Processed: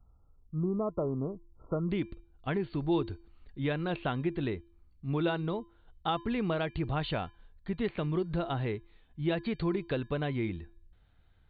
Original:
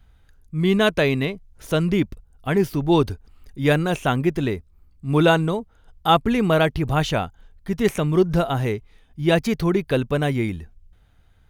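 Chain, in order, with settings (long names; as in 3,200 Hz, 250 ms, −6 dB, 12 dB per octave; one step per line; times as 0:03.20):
linear-phase brick-wall low-pass 1,400 Hz, from 0:01.89 4,600 Hz
downward compressor 5 to 1, threshold −20 dBFS, peak gain reduction 9 dB
tuned comb filter 340 Hz, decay 0.49 s, harmonics odd, mix 60%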